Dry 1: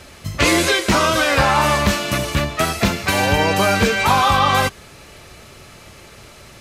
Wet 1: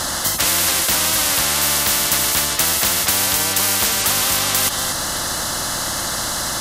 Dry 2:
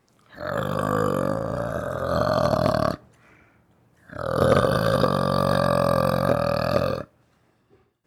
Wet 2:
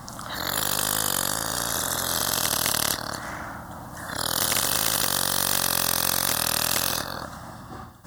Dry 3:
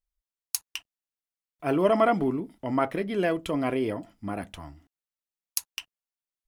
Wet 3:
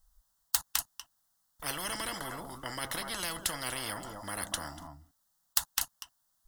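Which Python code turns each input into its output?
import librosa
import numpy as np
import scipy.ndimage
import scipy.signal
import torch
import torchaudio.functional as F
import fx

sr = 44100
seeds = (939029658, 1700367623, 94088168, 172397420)

y = fx.fixed_phaser(x, sr, hz=1000.0, stages=4)
y = y + 10.0 ** (-21.5 / 20.0) * np.pad(y, (int(241 * sr / 1000.0), 0))[:len(y)]
y = fx.spectral_comp(y, sr, ratio=10.0)
y = F.gain(torch.from_numpy(y), 3.5).numpy()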